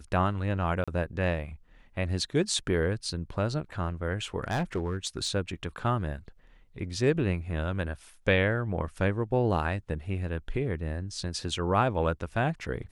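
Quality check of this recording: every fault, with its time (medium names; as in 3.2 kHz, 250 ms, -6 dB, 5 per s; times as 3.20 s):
0.84–0.88 s: dropout 36 ms
4.39–5.29 s: clipped -24 dBFS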